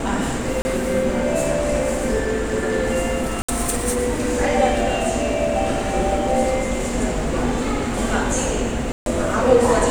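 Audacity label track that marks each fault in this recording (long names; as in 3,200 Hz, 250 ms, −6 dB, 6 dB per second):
0.620000	0.650000	drop-out 30 ms
3.420000	3.480000	drop-out 65 ms
8.920000	9.060000	drop-out 142 ms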